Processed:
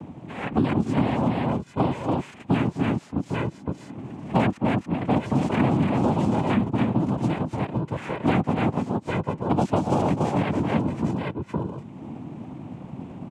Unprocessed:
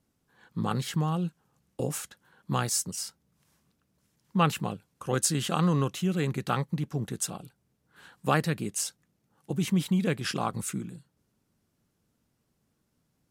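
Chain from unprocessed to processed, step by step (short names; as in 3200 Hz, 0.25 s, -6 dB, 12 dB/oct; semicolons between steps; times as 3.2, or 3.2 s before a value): formant-preserving pitch shift +8 st; LPF 2300 Hz 12 dB/oct; tilt -3.5 dB/oct; notch 1100 Hz; noise vocoder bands 4; tapped delay 0.249/0.284/0.797/0.799 s -13/-4.5/-14.5/-19.5 dB; three-band squash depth 100%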